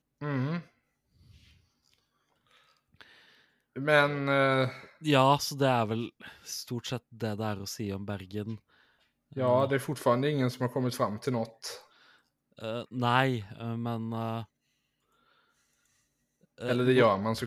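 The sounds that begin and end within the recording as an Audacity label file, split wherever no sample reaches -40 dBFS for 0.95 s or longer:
3.010000	14.430000	sound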